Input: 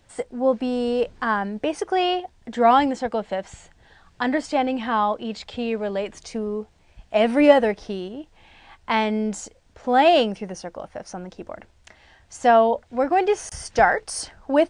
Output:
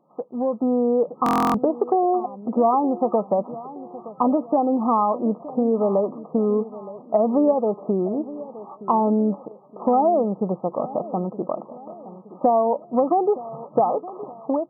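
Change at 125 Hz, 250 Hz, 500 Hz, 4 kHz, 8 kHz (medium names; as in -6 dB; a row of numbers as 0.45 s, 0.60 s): no reading, +2.5 dB, +0.5 dB, under -15 dB, under -15 dB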